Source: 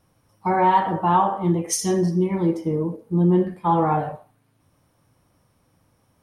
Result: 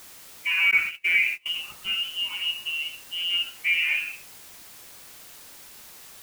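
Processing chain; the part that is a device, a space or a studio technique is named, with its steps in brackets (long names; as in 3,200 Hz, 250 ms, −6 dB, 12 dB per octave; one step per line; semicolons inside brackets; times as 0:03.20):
scrambled radio voice (band-pass filter 370–3,000 Hz; voice inversion scrambler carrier 3,200 Hz; white noise bed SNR 18 dB)
0:00.71–0:01.46: noise gate −24 dBFS, range −27 dB
level −3 dB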